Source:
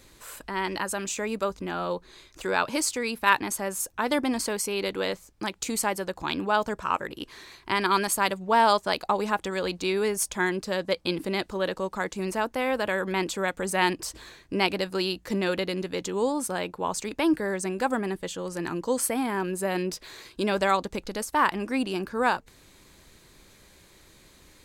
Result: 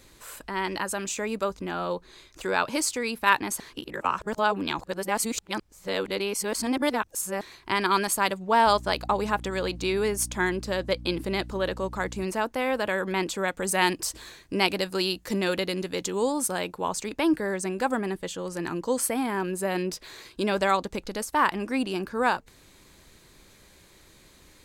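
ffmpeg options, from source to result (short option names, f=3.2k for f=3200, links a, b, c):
-filter_complex "[0:a]asettb=1/sr,asplit=3[a][b][c];[a]atrim=end=8.664[d];[b]atrim=start=8.66:end=12.24,asetpts=PTS-STARTPTS,afade=t=in:d=0.004:c=qsin,afade=t=out:st=3.576:d=0.004:c=qsin,aeval=exprs='val(0)+0.0112*(sin(2*PI*60*n/s)+sin(2*PI*2*60*n/s)/2+sin(2*PI*3*60*n/s)/3+sin(2*PI*4*60*n/s)/4+sin(2*PI*5*60*n/s)/5)':c=same[e];[c]atrim=start=12.236[f];[d][e]acrossfade=d=0.004:c1=hsin:c2=qsin[g];[g][f]acrossfade=d=0.004:c1=qsin:c2=hsin,asettb=1/sr,asplit=3[h][i][j];[h]atrim=end=13.624[k];[i]atrim=start=13.62:end=16.89,asetpts=PTS-STARTPTS,afade=t=in:d=0.004:c=qsin,afade=t=out:st=3.266:d=0.004:c=qsin,highshelf=f=4.8k:g=6.5[l];[j]atrim=start=16.886[m];[k][l]acrossfade=d=0.004:c1=hsin:c2=qsin[n];[n][m]acrossfade=d=0.004:c1=qsin:c2=hsin,asplit=3[o][p][q];[o]atrim=end=3.602[r];[p]atrim=start=3.598:end=7.412,asetpts=PTS-STARTPTS,areverse[s];[q]atrim=start=7.408[t];[r][s]acrossfade=d=0.004:c1=hsin:c2=hsin[u];[u][t]acrossfade=d=0.004:c1=hsin:c2=hsin"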